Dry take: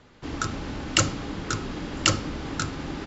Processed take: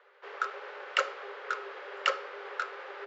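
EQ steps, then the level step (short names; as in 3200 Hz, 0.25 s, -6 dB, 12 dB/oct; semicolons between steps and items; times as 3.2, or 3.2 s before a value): rippled Chebyshev high-pass 390 Hz, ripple 6 dB; LPF 2600 Hz 12 dB/oct; notch 640 Hz, Q 16; 0.0 dB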